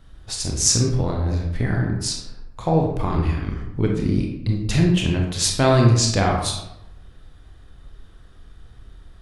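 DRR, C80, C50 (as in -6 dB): 0.0 dB, 7.0 dB, 3.5 dB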